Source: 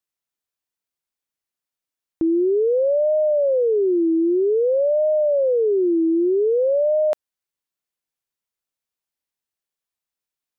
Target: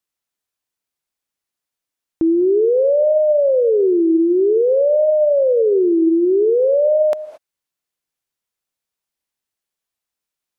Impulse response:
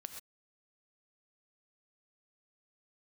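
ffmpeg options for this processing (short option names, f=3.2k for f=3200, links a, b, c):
-filter_complex "[0:a]asplit=2[a][b];[1:a]atrim=start_sample=2205,asetrate=26019,aresample=44100[c];[b][c]afir=irnorm=-1:irlink=0,volume=-3.5dB[d];[a][d]amix=inputs=2:normalize=0"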